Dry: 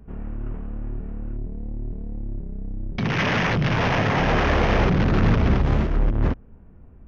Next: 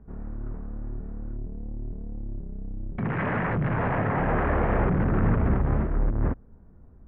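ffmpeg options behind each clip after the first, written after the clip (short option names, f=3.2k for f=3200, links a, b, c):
-af "lowpass=f=1.8k:w=0.5412,lowpass=f=1.8k:w=1.3066,volume=-4dB"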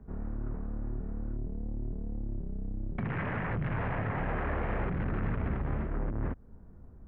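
-filter_complex "[0:a]acrossover=split=100|2100[a][b][c];[a]acompressor=threshold=-33dB:ratio=4[d];[b]acompressor=threshold=-35dB:ratio=4[e];[c]acompressor=threshold=-44dB:ratio=4[f];[d][e][f]amix=inputs=3:normalize=0"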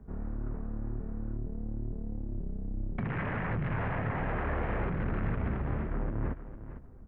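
-af "aecho=1:1:453|906:0.237|0.0474"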